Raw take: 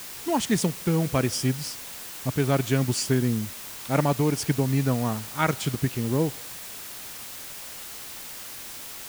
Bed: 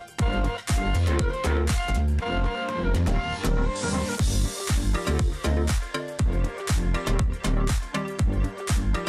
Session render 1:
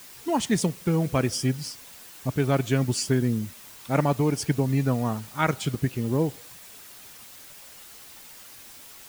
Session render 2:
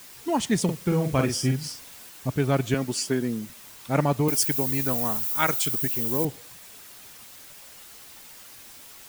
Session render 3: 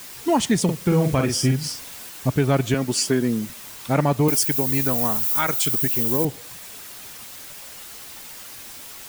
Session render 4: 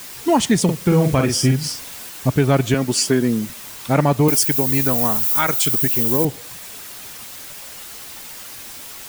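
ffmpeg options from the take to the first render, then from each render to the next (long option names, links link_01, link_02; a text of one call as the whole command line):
ffmpeg -i in.wav -af "afftdn=noise_reduction=8:noise_floor=-39" out.wav
ffmpeg -i in.wav -filter_complex "[0:a]asettb=1/sr,asplit=3[link_01][link_02][link_03];[link_01]atrim=end=0.644[link_04];[link_02]atrim=start=0.64:end=2.09,asetpts=PTS-STARTPTS,afade=type=in:duration=0.004:curve=qsin,afade=type=out:start_time=1.446:duration=0.004:curve=qsin,asplit=2[link_05][link_06];[link_06]adelay=45,volume=-5.5dB[link_07];[link_05][link_07]amix=inputs=2:normalize=0,atrim=end_sample=63945[link_08];[link_03]atrim=start=2.086[link_09];[link_04][link_08]acrossfade=duration=0.004:curve1=hsin:curve2=qsin[link_10];[link_10][link_09]acrossfade=duration=0.004:curve1=qsin:curve2=hsin,asettb=1/sr,asplit=3[link_11][link_12][link_13];[link_11]atrim=end=2.744[link_14];[link_12]atrim=start=2.74:end=3.5,asetpts=PTS-STARTPTS,afade=type=in:duration=0.004:curve=qsin,afade=type=out:start_time=0.756:duration=0.004:curve=qsin,highpass=210[link_15];[link_13]atrim=start=3.496[link_16];[link_14][link_15]acrossfade=duration=0.004:curve1=hsin:curve2=qsin[link_17];[link_17][link_16]acrossfade=duration=0.004:curve1=qsin:curve2=hsin,asettb=1/sr,asplit=3[link_18][link_19][link_20];[link_18]atrim=end=4.284[link_21];[link_19]atrim=start=4.28:end=6.25,asetpts=PTS-STARTPTS,afade=type=in:duration=0.004:curve=qsin,afade=type=out:start_time=1.966:duration=0.004:curve=qsin,aemphasis=mode=production:type=bsi[link_22];[link_20]atrim=start=6.246[link_23];[link_21][link_22]acrossfade=duration=0.004:curve1=hsin:curve2=qsin[link_24];[link_24][link_23]acrossfade=duration=0.004:curve1=qsin:curve2=hsin" out.wav
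ffmpeg -i in.wav -af "acontrast=83,alimiter=limit=-10dB:level=0:latency=1:release=318" out.wav
ffmpeg -i in.wav -af "volume=3.5dB" out.wav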